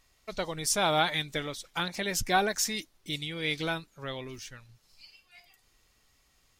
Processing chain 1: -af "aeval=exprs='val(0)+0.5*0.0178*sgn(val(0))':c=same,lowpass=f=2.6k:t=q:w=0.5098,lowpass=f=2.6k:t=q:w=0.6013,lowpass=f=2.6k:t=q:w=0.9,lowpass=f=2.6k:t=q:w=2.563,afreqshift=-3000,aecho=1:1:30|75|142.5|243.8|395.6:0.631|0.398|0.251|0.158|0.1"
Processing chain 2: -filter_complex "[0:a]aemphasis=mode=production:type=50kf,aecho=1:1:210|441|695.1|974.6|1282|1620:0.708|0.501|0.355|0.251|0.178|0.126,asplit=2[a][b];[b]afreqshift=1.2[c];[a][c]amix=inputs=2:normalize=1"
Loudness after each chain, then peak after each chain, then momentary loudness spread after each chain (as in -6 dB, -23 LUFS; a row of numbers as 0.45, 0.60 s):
-26.5, -26.5 LUFS; -9.5, -8.0 dBFS; 18, 19 LU